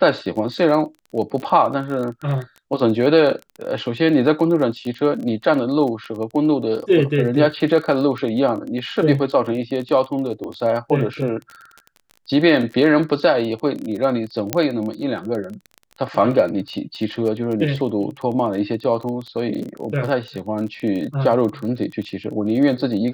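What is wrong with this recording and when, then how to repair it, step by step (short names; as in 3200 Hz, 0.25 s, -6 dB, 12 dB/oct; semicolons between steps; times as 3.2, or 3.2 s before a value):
crackle 24/s -27 dBFS
10.44 pop -21 dBFS
14.53 pop -2 dBFS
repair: de-click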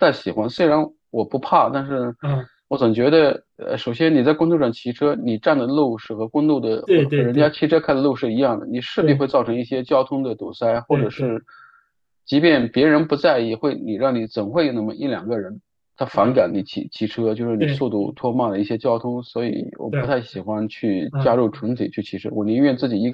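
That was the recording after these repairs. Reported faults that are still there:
10.44 pop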